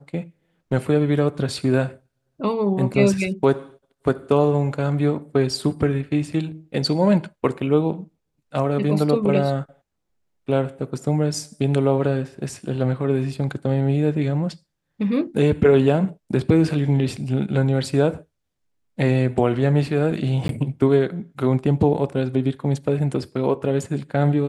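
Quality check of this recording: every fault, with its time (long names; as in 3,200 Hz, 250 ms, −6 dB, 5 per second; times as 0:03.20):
0:20.48–0:20.49: drop-out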